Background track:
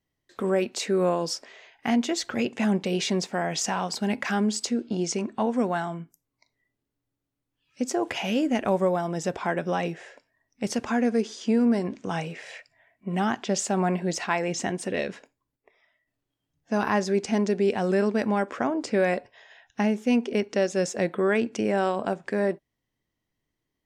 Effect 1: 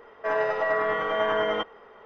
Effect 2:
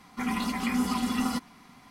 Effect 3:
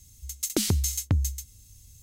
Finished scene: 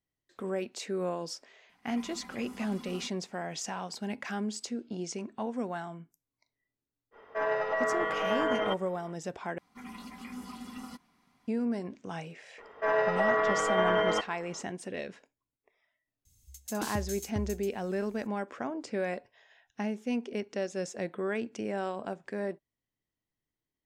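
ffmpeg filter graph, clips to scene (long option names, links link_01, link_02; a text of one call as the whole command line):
ffmpeg -i bed.wav -i cue0.wav -i cue1.wav -i cue2.wav -filter_complex "[2:a]asplit=2[link_01][link_02];[1:a]asplit=2[link_03][link_04];[0:a]volume=-9.5dB,asplit=2[link_05][link_06];[link_05]atrim=end=9.584[link_07];[link_02]atrim=end=1.9,asetpts=PTS-STARTPTS,volume=-15.5dB[link_08];[link_06]atrim=start=11.476[link_09];[link_01]atrim=end=1.9,asetpts=PTS-STARTPTS,volume=-17.5dB,afade=type=in:duration=0.004:curve=hsin,afade=type=out:start_time=1.896:duration=0.004:curve=hsin,adelay=1690[link_10];[link_03]atrim=end=2.05,asetpts=PTS-STARTPTS,volume=-4.5dB,afade=type=in:duration=0.05,afade=type=out:start_time=2:duration=0.05,adelay=7110[link_11];[link_04]atrim=end=2.05,asetpts=PTS-STARTPTS,volume=-1.5dB,afade=type=in:duration=0.004:curve=hsin,afade=type=out:start_time=2.046:duration=0.004:curve=hsin,adelay=12580[link_12];[3:a]atrim=end=2.02,asetpts=PTS-STARTPTS,volume=-12.5dB,afade=type=in:duration=0.004:curve=hsin,afade=type=out:start_time=2.016:duration=0.004:curve=hsin,adelay=16250[link_13];[link_07][link_08]acrossfade=duration=0.004:curve1=hsin:curve2=hsin[link_14];[link_14][link_09]acrossfade=duration=0.004:curve1=hsin:curve2=hsin[link_15];[link_15][link_10][link_11][link_12][link_13]amix=inputs=5:normalize=0" out.wav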